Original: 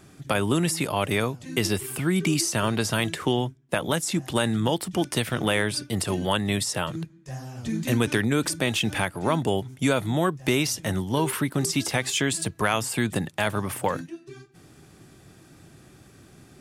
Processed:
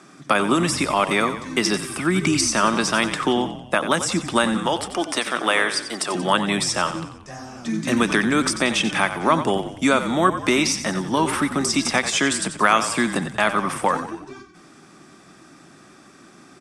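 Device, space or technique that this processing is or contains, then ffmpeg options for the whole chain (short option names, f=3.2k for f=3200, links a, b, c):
television speaker: -filter_complex "[0:a]asettb=1/sr,asplit=3[a][b][c];[a]atrim=end=4.574[d];[b]atrim=start=4.57:end=6.15,asetpts=PTS-STARTPTS,afade=t=in:d=0.004:c=qsin,afade=t=out:st=1.576:d=0.004:c=qsin,highpass=380[e];[c]atrim=start=6.146[f];[d][e]acrossfade=d=0.004:c1=hsin:c2=qsin[g];[g][f]acrossfade=d=0.004:c1=qsin:c2=hsin,highpass=f=190:w=0.5412,highpass=f=190:w=1.3066,equalizer=f=460:t=q:w=4:g=-5,equalizer=f=1.2k:t=q:w=4:g=7,equalizer=f=3k:t=q:w=4:g=-5,equalizer=f=4.3k:t=q:w=4:g=-6,equalizer=f=6.9k:t=q:w=4:g=-8,lowpass=f=7.4k:w=0.5412,lowpass=f=7.4k:w=1.3066,aemphasis=mode=production:type=cd,asplit=6[h][i][j][k][l][m];[i]adelay=91,afreqshift=-39,volume=-11dB[n];[j]adelay=182,afreqshift=-78,volume=-16.8dB[o];[k]adelay=273,afreqshift=-117,volume=-22.7dB[p];[l]adelay=364,afreqshift=-156,volume=-28.5dB[q];[m]adelay=455,afreqshift=-195,volume=-34.4dB[r];[h][n][o][p][q][r]amix=inputs=6:normalize=0,volume=5.5dB"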